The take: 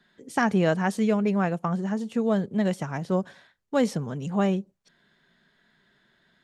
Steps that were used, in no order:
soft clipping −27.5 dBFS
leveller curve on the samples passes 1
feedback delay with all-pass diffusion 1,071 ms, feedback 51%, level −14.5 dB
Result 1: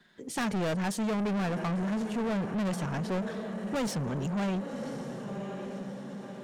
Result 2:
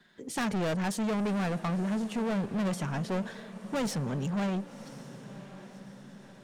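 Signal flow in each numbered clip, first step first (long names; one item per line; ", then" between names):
feedback delay with all-pass diffusion, then soft clipping, then leveller curve on the samples
soft clipping, then leveller curve on the samples, then feedback delay with all-pass diffusion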